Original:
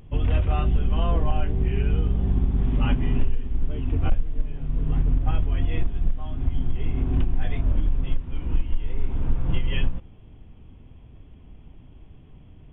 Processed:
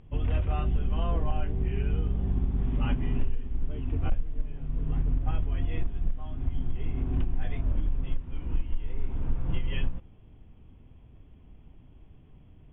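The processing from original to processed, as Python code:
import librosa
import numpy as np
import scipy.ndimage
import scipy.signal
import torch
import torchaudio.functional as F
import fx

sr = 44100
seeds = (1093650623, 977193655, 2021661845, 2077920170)

y = scipy.signal.sosfilt(scipy.signal.butter(2, 3700.0, 'lowpass', fs=sr, output='sos'), x)
y = y * librosa.db_to_amplitude(-5.5)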